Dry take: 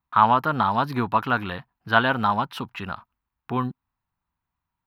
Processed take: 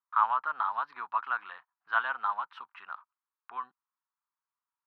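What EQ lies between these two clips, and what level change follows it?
ladder band-pass 1.4 kHz, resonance 45%; 0.0 dB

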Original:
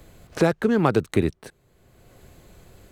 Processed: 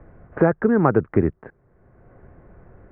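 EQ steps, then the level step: steep low-pass 1.8 kHz 36 dB/octave; +2.5 dB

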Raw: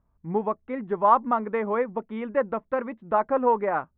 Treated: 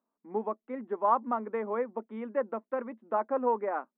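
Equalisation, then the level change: elliptic high-pass 220 Hz; low-pass 1.9 kHz 6 dB/octave; -5.5 dB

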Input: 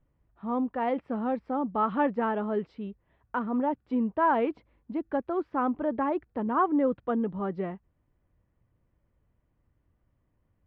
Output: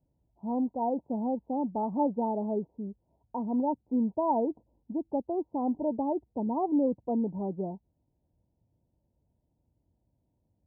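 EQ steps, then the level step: high-pass 49 Hz; rippled Chebyshev low-pass 950 Hz, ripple 3 dB; 0.0 dB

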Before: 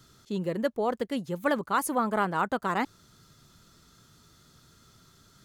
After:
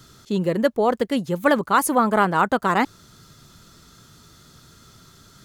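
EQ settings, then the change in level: flat; +8.5 dB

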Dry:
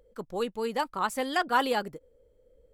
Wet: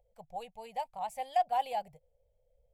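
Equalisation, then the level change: FFT filter 150 Hz 0 dB, 320 Hz -29 dB, 740 Hz +11 dB, 1.3 kHz -23 dB, 2.3 kHz -1 dB, 3.9 kHz -9 dB, 8.1 kHz -5 dB; -7.0 dB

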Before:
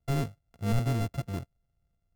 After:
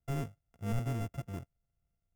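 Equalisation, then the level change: peaking EQ 4.2 kHz -13.5 dB 0.25 oct; -6.5 dB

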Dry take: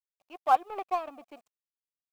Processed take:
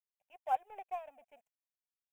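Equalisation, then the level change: static phaser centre 1.2 kHz, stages 6; -9.0 dB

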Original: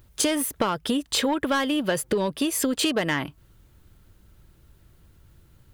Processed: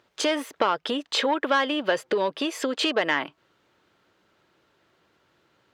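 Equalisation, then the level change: high-pass 440 Hz 12 dB/octave; distance through air 180 m; peaking EQ 13 kHz +7 dB 1.2 oct; +4.0 dB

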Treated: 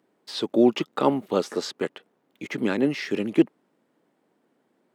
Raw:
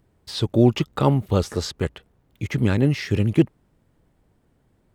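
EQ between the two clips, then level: high-pass 230 Hz 24 dB/octave; treble shelf 5.7 kHz -7 dB; 0.0 dB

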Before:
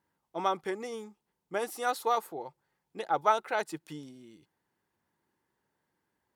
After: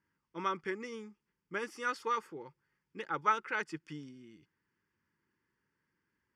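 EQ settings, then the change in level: resonant low-pass 4.5 kHz, resonance Q 4.2; static phaser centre 1.7 kHz, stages 4; 0.0 dB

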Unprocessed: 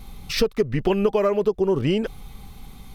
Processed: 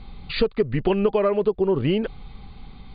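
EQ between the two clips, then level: brick-wall FIR low-pass 4.8 kHz; distance through air 56 m; 0.0 dB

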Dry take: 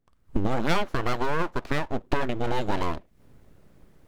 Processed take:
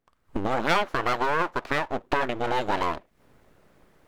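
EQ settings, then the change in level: bass shelf 220 Hz -5 dB; bass shelf 490 Hz -11 dB; treble shelf 2.6 kHz -8.5 dB; +8.0 dB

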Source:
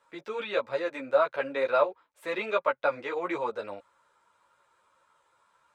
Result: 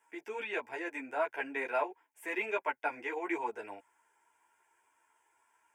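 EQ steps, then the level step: high-pass 160 Hz 6 dB/octave; treble shelf 3.6 kHz +7 dB; static phaser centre 820 Hz, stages 8; -1.5 dB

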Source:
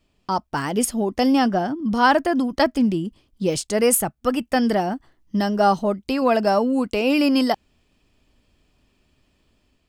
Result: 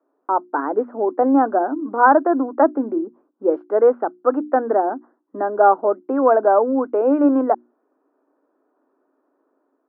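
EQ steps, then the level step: Chebyshev band-pass 280–1500 Hz, order 4; peaking EQ 480 Hz +4 dB 3 oct; hum notches 60/120/180/240/300/360 Hz; +1.5 dB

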